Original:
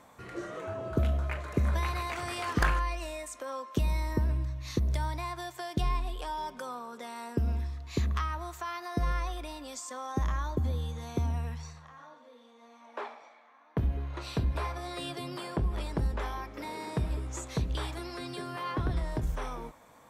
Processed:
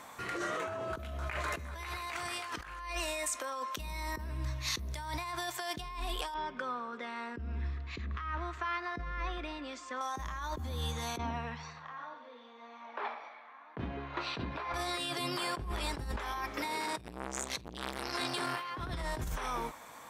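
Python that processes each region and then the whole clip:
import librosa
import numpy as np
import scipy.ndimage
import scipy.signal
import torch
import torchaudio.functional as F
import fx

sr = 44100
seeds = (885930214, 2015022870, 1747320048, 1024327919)

y = fx.chain(x, sr, fx.highpass(hz=50.0, slope=12),
    fx.clip_hard(threshold_db=-20.5),
    fx.doubler(ms=12.0, db=-5.5), at=(1.5, 1.99))
y = fx.chain(y, sr, fx.lowpass(hz=2100.0, slope=12),
    fx.peak_eq(hz=840.0, db=-9.5, octaves=0.9),
    fx.echo_feedback(ms=201, feedback_pct=42, wet_db=-21), at=(6.34, 10.01))
y = fx.chain(y, sr, fx.highpass(hz=140.0, slope=12),
    fx.air_absorb(metres=230.0), at=(11.17, 14.74))
y = fx.chain(y, sr, fx.over_compress(threshold_db=-35.0, ratio=-0.5),
    fx.transformer_sat(knee_hz=1200.0), at=(16.8, 18.7))
y = fx.low_shelf(y, sr, hz=340.0, db=-12.0)
y = fx.over_compress(y, sr, threshold_db=-43.0, ratio=-1.0)
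y = fx.peak_eq(y, sr, hz=550.0, db=-4.0, octaves=0.99)
y = F.gain(torch.from_numpy(y), 6.5).numpy()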